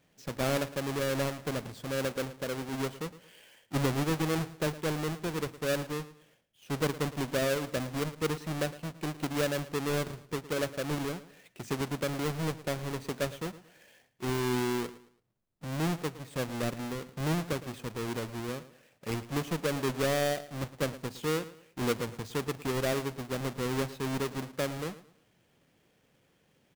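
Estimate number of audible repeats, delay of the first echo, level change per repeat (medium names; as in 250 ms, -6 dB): 2, 111 ms, -10.0 dB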